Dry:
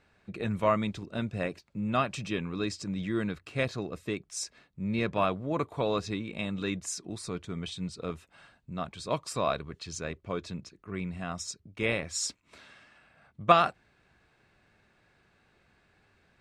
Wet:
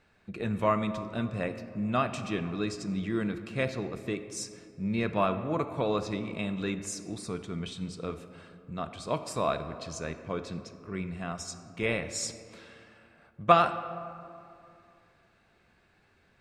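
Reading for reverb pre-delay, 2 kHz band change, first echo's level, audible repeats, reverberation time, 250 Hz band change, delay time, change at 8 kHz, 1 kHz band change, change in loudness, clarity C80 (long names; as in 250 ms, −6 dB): 5 ms, −0.5 dB, no echo audible, no echo audible, 2.5 s, +1.0 dB, no echo audible, −1.5 dB, +0.5 dB, 0.0 dB, 12.0 dB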